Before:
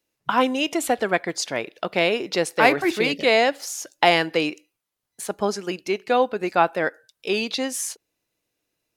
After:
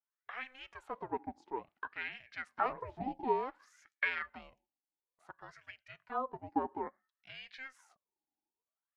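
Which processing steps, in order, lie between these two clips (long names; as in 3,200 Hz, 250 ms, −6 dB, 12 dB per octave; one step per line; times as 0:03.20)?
LFO wah 0.57 Hz 550–2,000 Hz, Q 14
ring modulation 260 Hz
level +1 dB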